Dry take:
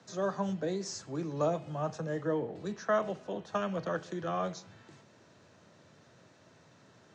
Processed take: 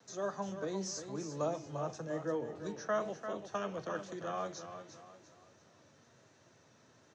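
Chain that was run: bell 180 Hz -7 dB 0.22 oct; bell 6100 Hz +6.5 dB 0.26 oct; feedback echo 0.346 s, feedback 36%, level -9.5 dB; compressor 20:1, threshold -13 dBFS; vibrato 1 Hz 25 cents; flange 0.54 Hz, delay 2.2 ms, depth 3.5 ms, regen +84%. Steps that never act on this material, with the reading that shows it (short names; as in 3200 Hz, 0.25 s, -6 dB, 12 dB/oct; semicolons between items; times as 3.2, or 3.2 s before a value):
compressor, threshold -13 dBFS: input peak -18.0 dBFS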